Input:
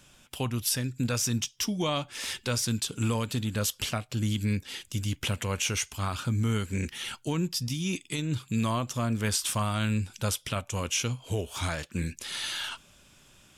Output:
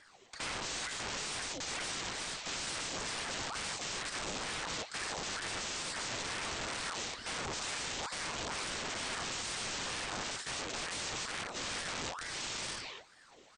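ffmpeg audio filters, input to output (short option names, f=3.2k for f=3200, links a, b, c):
-af "aphaser=in_gain=1:out_gain=1:delay=3.2:decay=0.49:speed=1.8:type=sinusoidal,aecho=1:1:59|82|116|235|254|263:0.316|0.398|0.211|0.355|0.355|0.133,aresample=16000,aeval=exprs='(mod(23.7*val(0)+1,2)-1)/23.7':c=same,aresample=44100,aeval=exprs='val(0)*sin(2*PI*1100*n/s+1100*0.65/2.2*sin(2*PI*2.2*n/s))':c=same,volume=-3.5dB"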